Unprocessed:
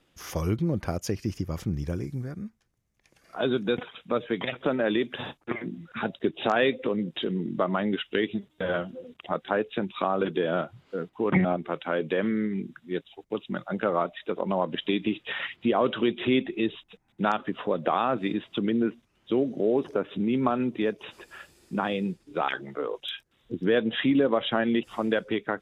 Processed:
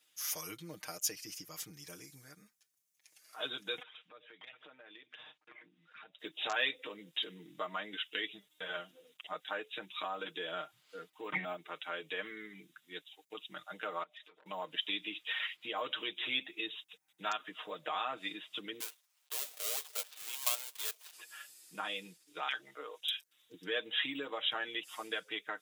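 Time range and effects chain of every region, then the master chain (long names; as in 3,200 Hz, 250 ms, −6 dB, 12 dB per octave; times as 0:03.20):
0:03.82–0:06.19: low-pass filter 3,100 Hz + downward compressor 2.5 to 1, threshold −46 dBFS
0:14.03–0:14.46: downward compressor 5 to 1, threshold −44 dBFS + high-shelf EQ 8,600 Hz −9 dB + saturating transformer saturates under 920 Hz
0:18.80–0:21.13: gap after every zero crossing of 0.22 ms + high-pass filter 590 Hz 24 dB per octave + dynamic equaliser 1,800 Hz, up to −6 dB, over −49 dBFS, Q 1.5
whole clip: first difference; comb filter 6.5 ms, depth 82%; level +3.5 dB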